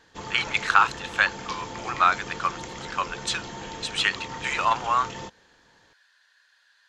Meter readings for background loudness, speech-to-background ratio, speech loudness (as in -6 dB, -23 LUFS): -37.0 LUFS, 12.0 dB, -25.0 LUFS